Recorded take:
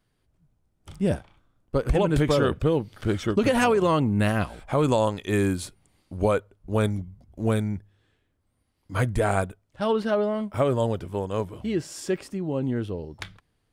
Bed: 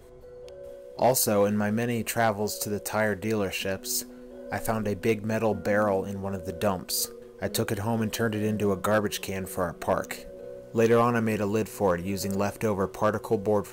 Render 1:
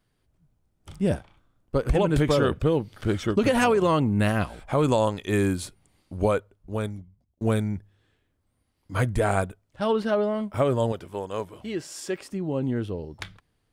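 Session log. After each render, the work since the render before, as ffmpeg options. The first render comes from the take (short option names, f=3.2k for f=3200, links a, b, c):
-filter_complex "[0:a]asettb=1/sr,asplit=3[a][b][c];[a]atrim=end=10.924[d];[b]atrim=start=10.92:end=12.31,asetpts=PTS-STARTPTS,afade=t=in:d=0.004:c=qsin,afade=t=out:st=1.386:d=0.004:c=qsin,lowshelf=f=270:g=-10.5[e];[c]atrim=start=12.306[f];[d][e]acrossfade=d=0.004:c1=hsin:c2=qsin[g];[g][f]acrossfade=d=0.004:c1=qsin:c2=hsin,asplit=2[h][i];[h]atrim=end=7.41,asetpts=PTS-STARTPTS,afade=t=out:st=6.23:d=1.18[j];[i]atrim=start=7.41,asetpts=PTS-STARTPTS,afade=t=in:d=0.004:c=hsin[k];[j][k]concat=n=2:v=0:a=1"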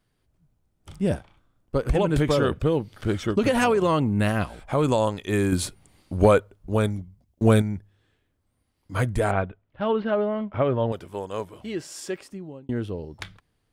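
-filter_complex "[0:a]asettb=1/sr,asplit=3[a][b][c];[a]atrim=end=5.524[d];[b]atrim=start=5.52:end=7.62,asetpts=PTS-STARTPTS,afade=t=in:d=0.004:c=qsin,afade=t=out:st=2.096:d=0.004:c=qsin,acontrast=70[e];[c]atrim=start=7.616[f];[d][e]acrossfade=d=0.004:c1=hsin:c2=qsin[g];[g][f]acrossfade=d=0.004:c1=qsin:c2=hsin,asettb=1/sr,asplit=3[h][i][j];[h]atrim=end=9.314[k];[i]atrim=start=9.31:end=10.92,asetpts=PTS-STARTPTS,afade=t=in:d=0.004:c=qsin,afade=t=out:st=1.606:d=0.004:c=qsin,lowpass=f=3.2k:w=0.5412,lowpass=f=3.2k:w=1.3066[l];[j]atrim=start=10.916[m];[k][l]acrossfade=d=0.004:c1=hsin:c2=qsin[n];[n][m]acrossfade=d=0.004:c1=qsin:c2=hsin,asplit=2[o][p];[o]atrim=end=12.69,asetpts=PTS-STARTPTS,afade=t=out:st=12.04:d=0.65[q];[p]atrim=start=12.69,asetpts=PTS-STARTPTS,afade=t=in:d=0.004:c=hsin[r];[q][r]concat=n=2:v=0:a=1"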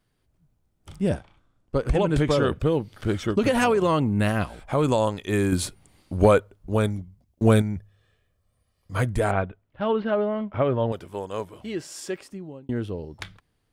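-filter_complex "[0:a]asettb=1/sr,asplit=3[a][b][c];[a]atrim=end=1.094[d];[b]atrim=start=1.09:end=2.48,asetpts=PTS-STARTPTS,afade=t=in:d=0.004:c=qsin,afade=t=out:st=1.386:d=0.004:c=qsin,lowpass=10k[e];[c]atrim=start=2.476[f];[d][e]acrossfade=d=0.004:c1=hsin:c2=qsin[g];[g][f]acrossfade=d=0.004:c1=qsin:c2=hsin,asettb=1/sr,asplit=3[h][i][j];[h]atrim=end=7.764[k];[i]atrim=start=7.76:end=8.95,asetpts=PTS-STARTPTS,afade=t=in:d=0.004:c=qsin,afade=t=out:st=1.186:d=0.004:c=qsin,aecho=1:1:1.7:0.65,atrim=end_sample=52479[l];[j]atrim=start=8.946[m];[k][l]acrossfade=d=0.004:c1=hsin:c2=qsin[n];[n][m]acrossfade=d=0.004:c1=qsin:c2=hsin"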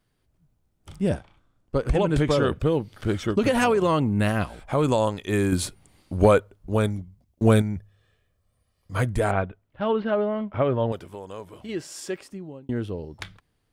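-filter_complex "[0:a]asettb=1/sr,asplit=3[a][b][c];[a]atrim=end=10.984[d];[b]atrim=start=10.98:end=11.69,asetpts=PTS-STARTPTS,afade=t=in:d=0.004:c=qsin,afade=t=out:st=0.706:d=0.004:c=qsin,acompressor=threshold=-35dB:ratio=2.5:attack=3.2:release=140:knee=1:detection=peak[e];[c]atrim=start=11.686[f];[d][e]acrossfade=d=0.004:c1=hsin:c2=qsin[g];[g][f]acrossfade=d=0.004:c1=qsin:c2=hsin"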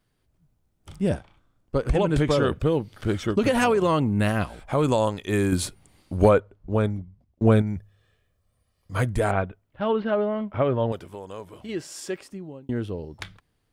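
-filter_complex "[0:a]asplit=3[a][b][c];[a]afade=t=out:st=6.28:d=0.02[d];[b]lowpass=f=1.9k:p=1,afade=t=in:st=6.28:d=0.02,afade=t=out:st=7.66:d=0.02[e];[c]afade=t=in:st=7.66:d=0.02[f];[d][e][f]amix=inputs=3:normalize=0"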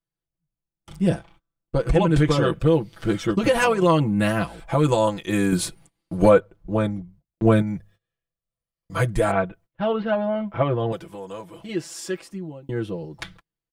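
-af "agate=range=-22dB:threshold=-50dB:ratio=16:detection=peak,aecho=1:1:6:0.91"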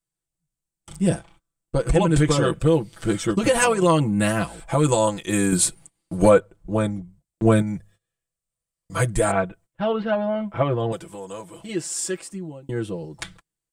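-af "equalizer=f=8.2k:w=1.8:g=13.5"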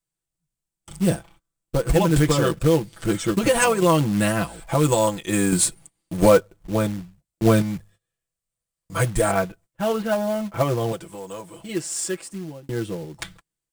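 -af "acrusher=bits=4:mode=log:mix=0:aa=0.000001"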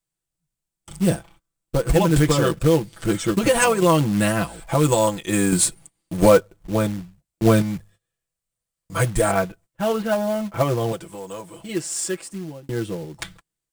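-af "volume=1dB"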